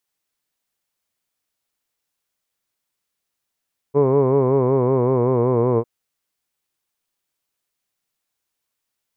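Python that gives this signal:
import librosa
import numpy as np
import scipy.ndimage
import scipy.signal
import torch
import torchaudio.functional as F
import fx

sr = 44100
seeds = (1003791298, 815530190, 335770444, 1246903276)

y = fx.vowel(sr, seeds[0], length_s=1.9, word='hood', hz=138.0, glide_st=-2.5, vibrato_hz=5.3, vibrato_st=0.9)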